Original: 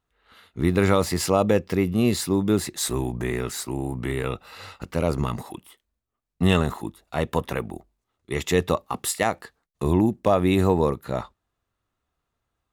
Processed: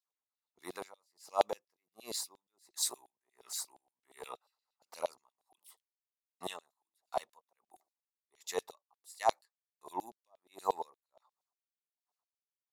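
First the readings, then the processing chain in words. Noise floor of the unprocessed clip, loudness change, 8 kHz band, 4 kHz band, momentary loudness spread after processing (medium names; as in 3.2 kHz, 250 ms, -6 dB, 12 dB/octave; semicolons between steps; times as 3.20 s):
-81 dBFS, -15.0 dB, -10.0 dB, -12.0 dB, 21 LU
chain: high-order bell 2.1 kHz -14 dB; LFO high-pass saw down 8.5 Hz 630–4000 Hz; logarithmic tremolo 1.4 Hz, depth 40 dB; trim -6 dB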